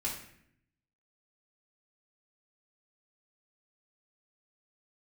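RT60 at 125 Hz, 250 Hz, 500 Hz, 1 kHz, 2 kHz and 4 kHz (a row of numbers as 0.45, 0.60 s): 1.1, 1.0, 0.75, 0.65, 0.75, 0.55 s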